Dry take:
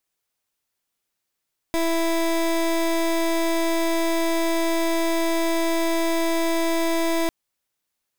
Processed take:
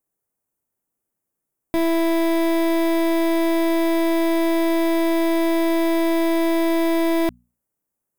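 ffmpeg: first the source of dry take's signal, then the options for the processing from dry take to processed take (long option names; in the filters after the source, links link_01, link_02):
-f lavfi -i "aevalsrc='0.0841*(2*lt(mod(331*t,1),0.23)-1)':duration=5.55:sample_rate=44100"
-filter_complex "[0:a]equalizer=frequency=210:width_type=o:width=2.8:gain=6.5,bandreject=frequency=60:width_type=h:width=6,bandreject=frequency=120:width_type=h:width=6,bandreject=frequency=180:width_type=h:width=6,bandreject=frequency=240:width_type=h:width=6,acrossover=split=6800[link_01][link_02];[link_01]adynamicsmooth=sensitivity=1.5:basefreq=1400[link_03];[link_03][link_02]amix=inputs=2:normalize=0"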